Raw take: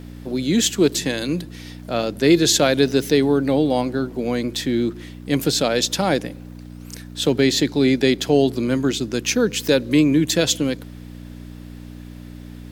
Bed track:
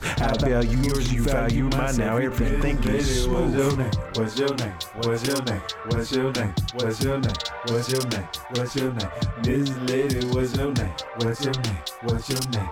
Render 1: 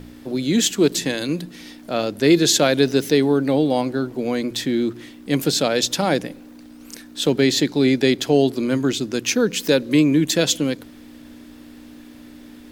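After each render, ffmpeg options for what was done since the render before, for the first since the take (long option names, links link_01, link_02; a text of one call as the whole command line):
ffmpeg -i in.wav -af "bandreject=frequency=60:width_type=h:width=4,bandreject=frequency=120:width_type=h:width=4,bandreject=frequency=180:width_type=h:width=4" out.wav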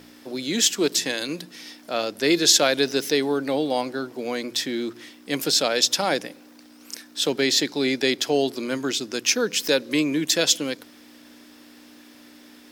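ffmpeg -i in.wav -af "highpass=frequency=620:poles=1,equalizer=frequency=5300:width_type=o:width=0.26:gain=6" out.wav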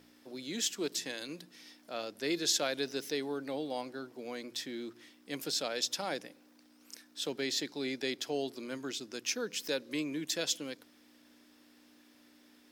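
ffmpeg -i in.wav -af "volume=-13.5dB" out.wav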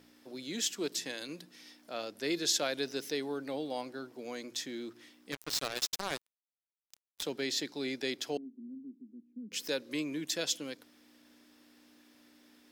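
ffmpeg -i in.wav -filter_complex "[0:a]asettb=1/sr,asplit=3[link_01][link_02][link_03];[link_01]atrim=end=4.244[link_04];[link_02]atrim=start=4.24:end=4.79,asetpts=PTS-STARTPTS,afade=type=in:duration=0.004:curve=qsin,afade=type=out:start_time=0.546:duration=0.004:curve=qsin,equalizer=frequency=6600:width_type=o:width=0.25:gain=7[link_05];[link_03]atrim=start=4.786[link_06];[link_04][link_05]acrossfade=duration=0.004:curve1=hsin:curve2=qsin[link_07];[link_07][link_06]acrossfade=duration=0.004:curve1=qsin:curve2=hsin,asettb=1/sr,asplit=3[link_08][link_09][link_10];[link_08]atrim=end=5.324[link_11];[link_09]atrim=start=5.32:end=7.23,asetpts=PTS-STARTPTS,afade=type=in:duration=0.004:curve=qsin,afade=type=out:start_time=1.906:duration=0.004:curve=qsin,acrusher=bits=4:mix=0:aa=0.5[link_12];[link_10]atrim=start=7.226[link_13];[link_11][link_12]acrossfade=duration=0.004:curve1=hsin:curve2=qsin[link_14];[link_14][link_13]acrossfade=duration=0.004:curve1=qsin:curve2=hsin,asettb=1/sr,asplit=3[link_15][link_16][link_17];[link_15]atrim=end=8.374[link_18];[link_16]atrim=start=8.37:end=9.52,asetpts=PTS-STARTPTS,afade=type=in:duration=0.004:curve=qsin,afade=type=out:start_time=1.146:duration=0.004:curve=qsin,asuperpass=centerf=230:order=4:qfactor=3.2[link_19];[link_17]atrim=start=9.516[link_20];[link_18][link_19]acrossfade=duration=0.004:curve1=hsin:curve2=qsin[link_21];[link_21][link_20]acrossfade=duration=0.004:curve1=qsin:curve2=hsin" out.wav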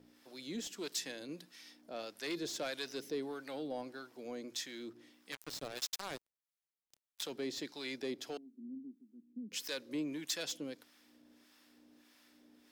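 ffmpeg -i in.wav -filter_complex "[0:a]asoftclip=type=tanh:threshold=-27.5dB,acrossover=split=750[link_01][link_02];[link_01]aeval=exprs='val(0)*(1-0.7/2+0.7/2*cos(2*PI*1.6*n/s))':channel_layout=same[link_03];[link_02]aeval=exprs='val(0)*(1-0.7/2-0.7/2*cos(2*PI*1.6*n/s))':channel_layout=same[link_04];[link_03][link_04]amix=inputs=2:normalize=0" out.wav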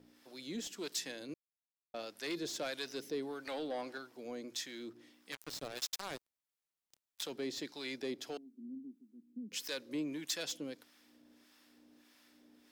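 ffmpeg -i in.wav -filter_complex "[0:a]asettb=1/sr,asplit=3[link_01][link_02][link_03];[link_01]atrim=end=3.454[link_04];[link_02]atrim=start=3.45:end=3.98,asetpts=PTS-STARTPTS,afade=type=in:duration=0.004:curve=qsin,afade=type=out:start_time=0.526:duration=0.004:curve=qsin,asplit=2[link_05][link_06];[link_06]highpass=frequency=720:poles=1,volume=13dB,asoftclip=type=tanh:threshold=-30.5dB[link_07];[link_05][link_07]amix=inputs=2:normalize=0,lowpass=frequency=5600:poles=1,volume=-6dB[link_08];[link_03]atrim=start=3.976[link_09];[link_04][link_08]acrossfade=duration=0.004:curve1=hsin:curve2=qsin[link_10];[link_10][link_09]acrossfade=duration=0.004:curve1=qsin:curve2=hsin,asplit=3[link_11][link_12][link_13];[link_11]atrim=end=1.34,asetpts=PTS-STARTPTS,afade=type=out:start_time=1.336:duration=0.004:curve=hsin[link_14];[link_12]atrim=start=1.34:end=1.94,asetpts=PTS-STARTPTS,volume=0[link_15];[link_13]atrim=start=1.94,asetpts=PTS-STARTPTS,afade=type=in:duration=0.004:curve=hsin[link_16];[link_14][link_15][link_16]concat=n=3:v=0:a=1" out.wav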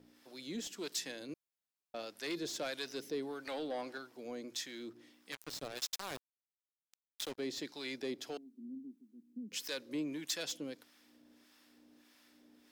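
ffmpeg -i in.wav -filter_complex "[0:a]asettb=1/sr,asplit=3[link_01][link_02][link_03];[link_01]atrim=end=5.974[link_04];[link_02]atrim=start=5.97:end=7.38,asetpts=PTS-STARTPTS,afade=type=in:duration=0.004:curve=qsin,afade=type=out:start_time=1.406:duration=0.004:curve=qsin,acrusher=bits=6:mix=0:aa=0.5[link_05];[link_03]atrim=start=7.376[link_06];[link_04][link_05]acrossfade=duration=0.004:curve1=hsin:curve2=qsin[link_07];[link_07][link_06]acrossfade=duration=0.004:curve1=qsin:curve2=hsin" out.wav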